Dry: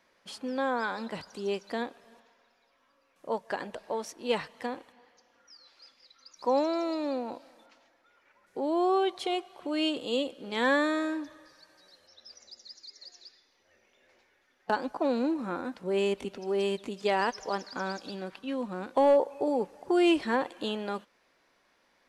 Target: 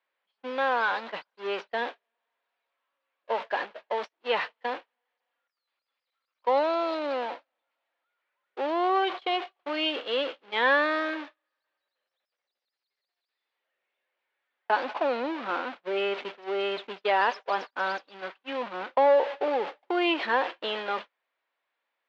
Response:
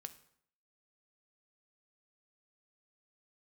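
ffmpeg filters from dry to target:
-af "aeval=exprs='val(0)+0.5*0.0316*sgn(val(0))':channel_layout=same,lowpass=frequency=3500:width=0.5412,lowpass=frequency=3500:width=1.3066,agate=range=-48dB:threshold=-31dB:ratio=16:detection=peak,highpass=580,volume=3.5dB"

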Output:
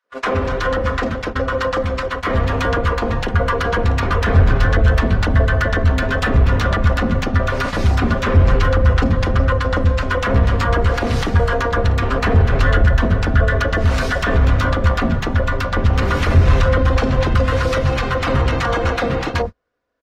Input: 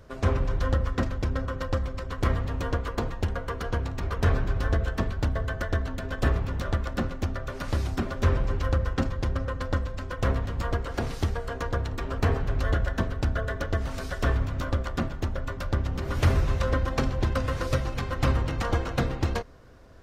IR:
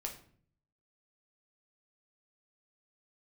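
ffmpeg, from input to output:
-filter_complex "[0:a]bandreject=frequency=60:width_type=h:width=6,bandreject=frequency=120:width_type=h:width=6,aecho=1:1:4.1:0.3,acrossover=split=200|900[link_01][link_02][link_03];[link_02]adelay=40[link_04];[link_01]adelay=110[link_05];[link_05][link_04][link_03]amix=inputs=3:normalize=0,acrossover=split=160[link_06][link_07];[link_06]dynaudnorm=framelen=640:gausssize=9:maxgain=13dB[link_08];[link_07]alimiter=level_in=4dB:limit=-24dB:level=0:latency=1:release=172,volume=-4dB[link_09];[link_08][link_09]amix=inputs=2:normalize=0,asplit=2[link_10][link_11];[link_11]highpass=frequency=720:poles=1,volume=26dB,asoftclip=type=tanh:threshold=-2dB[link_12];[link_10][link_12]amix=inputs=2:normalize=0,lowpass=frequency=2200:poles=1,volume=-6dB,agate=range=-36dB:threshold=-23dB:ratio=16:detection=peak,volume=2dB"

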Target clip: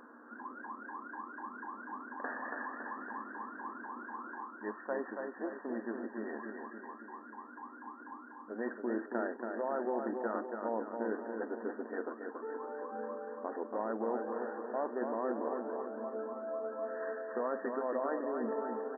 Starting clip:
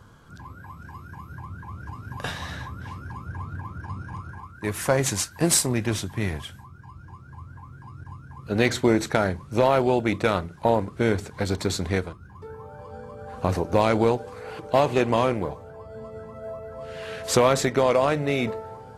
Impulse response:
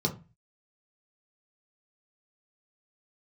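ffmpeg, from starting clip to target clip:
-af "aeval=exprs='val(0)+0.00355*(sin(2*PI*60*n/s)+sin(2*PI*2*60*n/s)/2+sin(2*PI*3*60*n/s)/3+sin(2*PI*4*60*n/s)/4+sin(2*PI*5*60*n/s)/5)':channel_layout=same,areverse,acompressor=threshold=-35dB:ratio=4,areverse,aecho=1:1:280|560|840|1120|1400|1680|1960:0.562|0.309|0.17|0.0936|0.0515|0.0283|0.0156,afftfilt=real='re*between(b*sr/4096,210,1900)':imag='im*between(b*sr/4096,210,1900)':win_size=4096:overlap=0.75"

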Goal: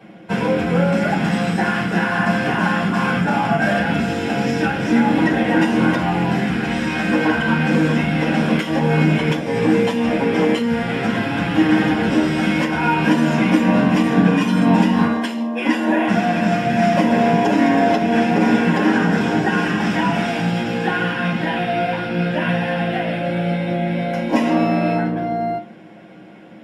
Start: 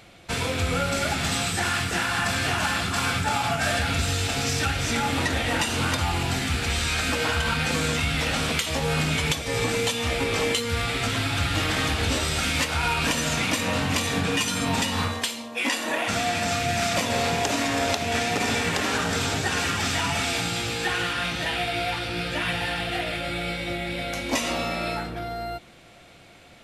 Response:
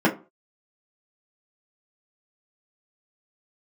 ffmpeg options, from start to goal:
-filter_complex "[1:a]atrim=start_sample=2205[link_01];[0:a][link_01]afir=irnorm=-1:irlink=0,volume=-12dB"

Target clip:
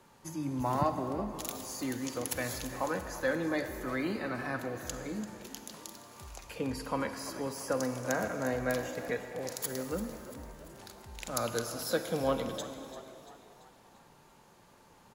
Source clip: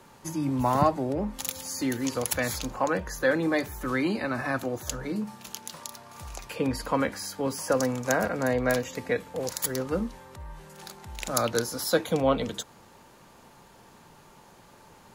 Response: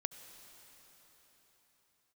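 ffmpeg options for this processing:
-filter_complex "[0:a]asplit=6[link_01][link_02][link_03][link_04][link_05][link_06];[link_02]adelay=341,afreqshift=57,volume=-14.5dB[link_07];[link_03]adelay=682,afreqshift=114,volume=-20.2dB[link_08];[link_04]adelay=1023,afreqshift=171,volume=-25.9dB[link_09];[link_05]adelay=1364,afreqshift=228,volume=-31.5dB[link_10];[link_06]adelay=1705,afreqshift=285,volume=-37.2dB[link_11];[link_01][link_07][link_08][link_09][link_10][link_11]amix=inputs=6:normalize=0[link_12];[1:a]atrim=start_sample=2205,asetrate=83790,aresample=44100[link_13];[link_12][link_13]afir=irnorm=-1:irlink=0"

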